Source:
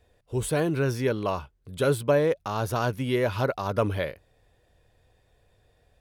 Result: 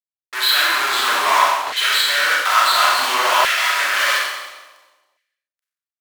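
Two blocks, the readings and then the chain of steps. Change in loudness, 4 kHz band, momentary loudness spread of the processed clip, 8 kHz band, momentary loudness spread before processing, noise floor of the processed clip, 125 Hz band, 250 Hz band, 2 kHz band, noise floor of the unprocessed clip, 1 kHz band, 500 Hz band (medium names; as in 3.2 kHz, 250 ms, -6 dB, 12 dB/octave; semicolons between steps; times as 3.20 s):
+11.5 dB, +24.5 dB, 6 LU, +16.5 dB, 9 LU, under -85 dBFS, under -25 dB, -12.0 dB, +19.5 dB, -67 dBFS, +16.5 dB, -3.5 dB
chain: knee-point frequency compression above 3 kHz 4:1; high-pass 61 Hz 24 dB/octave; comb 3 ms, depth 58%; reverse; compression, threshold -33 dBFS, peak gain reduction 16 dB; reverse; fuzz box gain 60 dB, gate -53 dBFS; filtered feedback delay 258 ms, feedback 25%, low-pass 960 Hz, level -22.5 dB; Schroeder reverb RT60 1.1 s, combs from 30 ms, DRR -3 dB; LFO high-pass saw down 0.58 Hz 920–1900 Hz; trim -4.5 dB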